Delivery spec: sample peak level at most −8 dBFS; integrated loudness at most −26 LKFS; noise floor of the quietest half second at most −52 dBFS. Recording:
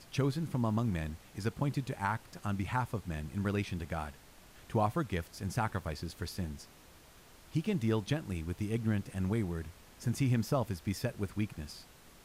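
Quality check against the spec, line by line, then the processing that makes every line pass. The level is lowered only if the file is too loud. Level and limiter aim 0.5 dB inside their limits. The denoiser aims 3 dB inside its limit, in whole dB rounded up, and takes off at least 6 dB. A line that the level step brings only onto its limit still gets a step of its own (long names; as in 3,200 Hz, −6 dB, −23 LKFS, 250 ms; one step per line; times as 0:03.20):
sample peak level −18.0 dBFS: in spec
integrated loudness −35.5 LKFS: in spec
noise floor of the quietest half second −57 dBFS: in spec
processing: no processing needed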